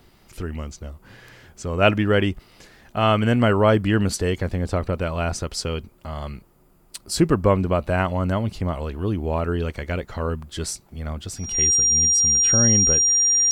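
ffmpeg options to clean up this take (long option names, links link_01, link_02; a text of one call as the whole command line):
ffmpeg -i in.wav -af "bandreject=frequency=5700:width=30" out.wav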